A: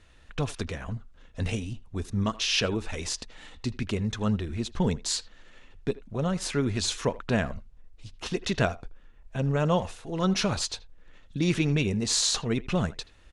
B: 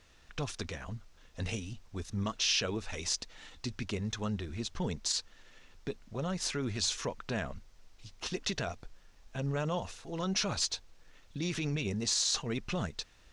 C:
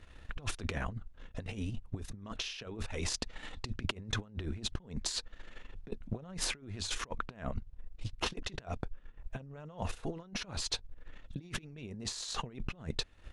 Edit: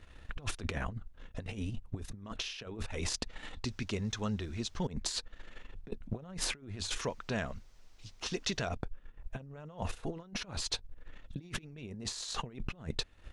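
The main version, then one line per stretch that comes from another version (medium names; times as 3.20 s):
C
3.65–4.87 s: from B
7.01–8.69 s: from B
not used: A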